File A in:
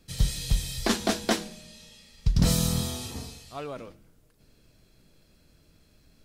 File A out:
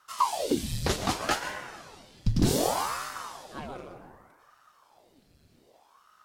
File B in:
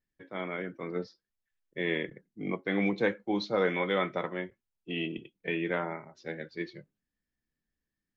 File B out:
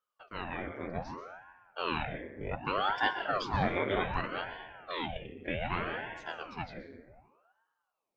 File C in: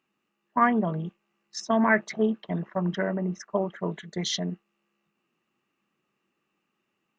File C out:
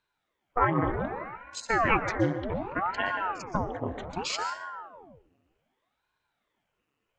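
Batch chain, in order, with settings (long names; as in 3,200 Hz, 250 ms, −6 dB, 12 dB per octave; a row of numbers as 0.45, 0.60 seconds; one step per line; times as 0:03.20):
dense smooth reverb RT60 1.5 s, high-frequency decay 0.3×, pre-delay 110 ms, DRR 6.5 dB
ring modulator whose carrier an LFO sweeps 670 Hz, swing 90%, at 0.65 Hz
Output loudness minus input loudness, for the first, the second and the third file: −1.5, −2.0, −2.5 LU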